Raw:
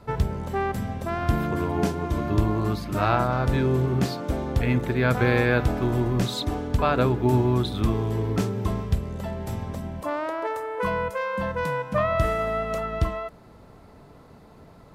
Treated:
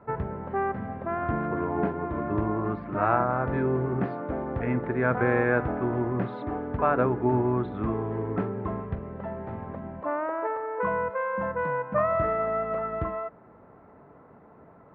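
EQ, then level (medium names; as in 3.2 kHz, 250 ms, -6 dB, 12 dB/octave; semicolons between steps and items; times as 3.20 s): high-pass 250 Hz 6 dB/octave; low-pass 1.8 kHz 24 dB/octave; 0.0 dB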